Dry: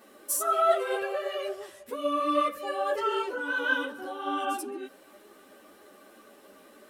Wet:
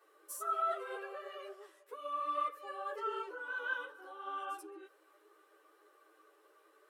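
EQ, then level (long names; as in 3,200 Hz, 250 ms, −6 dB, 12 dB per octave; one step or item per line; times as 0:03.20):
Chebyshev high-pass with heavy ripple 310 Hz, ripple 9 dB
−7.5 dB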